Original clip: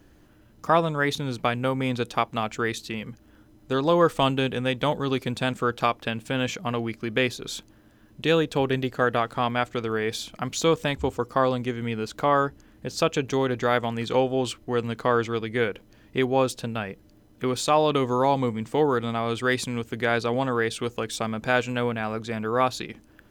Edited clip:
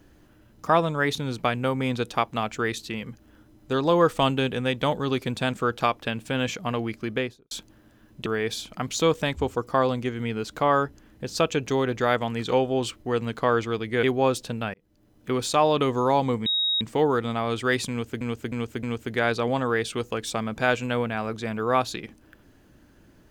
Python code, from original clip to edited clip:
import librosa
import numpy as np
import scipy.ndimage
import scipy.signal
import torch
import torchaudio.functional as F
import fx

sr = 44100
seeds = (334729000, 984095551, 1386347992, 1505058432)

y = fx.studio_fade_out(x, sr, start_s=7.03, length_s=0.48)
y = fx.edit(y, sr, fx.cut(start_s=8.26, length_s=1.62),
    fx.cut(start_s=15.65, length_s=0.52),
    fx.fade_in_span(start_s=16.88, length_s=0.57),
    fx.insert_tone(at_s=18.6, length_s=0.35, hz=3780.0, db=-21.0),
    fx.repeat(start_s=19.69, length_s=0.31, count=4), tone=tone)